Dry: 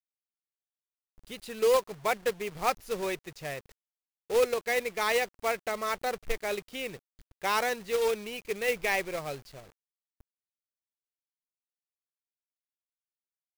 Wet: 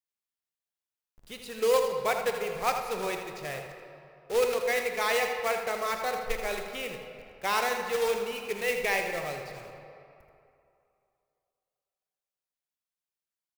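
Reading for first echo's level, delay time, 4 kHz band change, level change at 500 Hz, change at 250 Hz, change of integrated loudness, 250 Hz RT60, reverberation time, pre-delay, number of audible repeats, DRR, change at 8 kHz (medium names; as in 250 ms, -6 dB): -9.0 dB, 81 ms, +1.0 dB, +0.5 dB, -1.0 dB, +1.0 dB, 2.5 s, 2.7 s, 20 ms, 1, 3.5 dB, +1.0 dB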